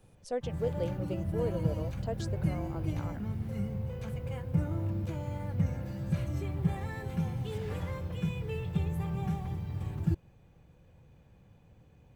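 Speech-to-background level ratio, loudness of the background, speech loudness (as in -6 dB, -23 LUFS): -4.0 dB, -35.0 LUFS, -39.0 LUFS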